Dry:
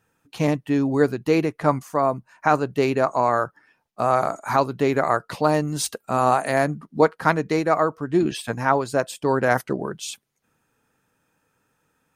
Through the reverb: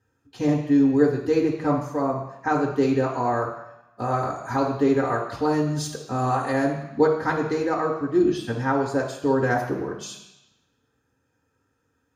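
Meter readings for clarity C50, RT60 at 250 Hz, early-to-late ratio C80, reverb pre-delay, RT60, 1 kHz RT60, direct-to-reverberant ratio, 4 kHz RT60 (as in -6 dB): 5.0 dB, 0.95 s, 8.5 dB, 3 ms, 0.90 s, 1.0 s, -2.5 dB, 1.0 s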